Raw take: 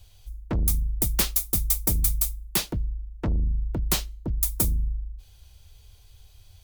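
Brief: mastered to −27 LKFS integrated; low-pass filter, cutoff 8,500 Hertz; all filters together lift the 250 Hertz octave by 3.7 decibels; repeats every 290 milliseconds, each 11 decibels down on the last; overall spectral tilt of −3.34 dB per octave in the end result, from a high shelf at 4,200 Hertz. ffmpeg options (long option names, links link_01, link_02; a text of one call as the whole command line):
ffmpeg -i in.wav -af "lowpass=8500,equalizer=frequency=250:width_type=o:gain=5,highshelf=frequency=4200:gain=6.5,aecho=1:1:290|580|870:0.282|0.0789|0.0221,volume=-0.5dB" out.wav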